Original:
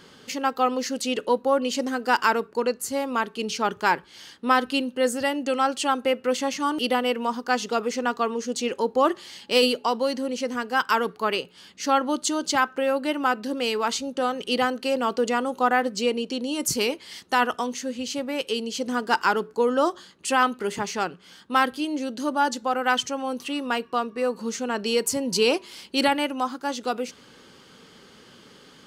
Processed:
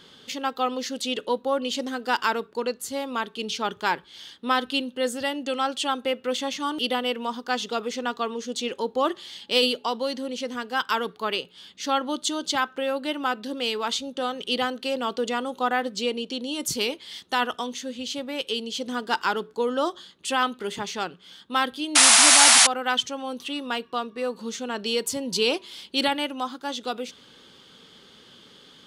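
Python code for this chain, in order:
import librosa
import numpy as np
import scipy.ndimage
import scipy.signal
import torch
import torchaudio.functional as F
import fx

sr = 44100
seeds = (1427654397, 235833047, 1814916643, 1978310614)

y = fx.peak_eq(x, sr, hz=3500.0, db=11.0, octaves=0.4)
y = fx.spec_paint(y, sr, seeds[0], shape='noise', start_s=21.95, length_s=0.72, low_hz=640.0, high_hz=11000.0, level_db=-11.0)
y = F.gain(torch.from_numpy(y), -3.5).numpy()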